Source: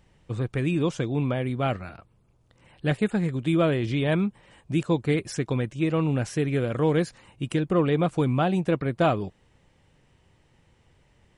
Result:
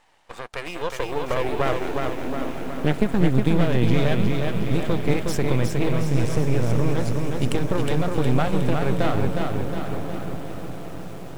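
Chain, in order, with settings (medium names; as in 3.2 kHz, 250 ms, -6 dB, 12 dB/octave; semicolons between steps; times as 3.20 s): 5.89–6.94 s: bass shelf 300 Hz +9 dB; compression 16:1, threshold -25 dBFS, peak gain reduction 13 dB; on a send: echo that smears into a reverb 907 ms, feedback 54%, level -9.5 dB; on the sum: high-pass sweep 790 Hz -> 91 Hz, 0.32–4.11 s; half-wave rectifier; bit-crushed delay 363 ms, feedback 55%, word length 9-bit, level -4 dB; trim +8 dB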